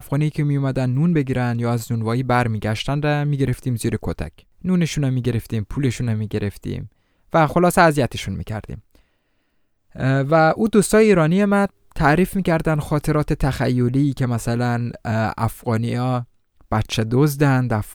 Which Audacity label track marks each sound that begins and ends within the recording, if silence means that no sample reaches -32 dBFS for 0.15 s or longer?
4.640000	6.860000	sound
7.330000	8.780000	sound
9.950000	11.670000	sound
11.960000	16.230000	sound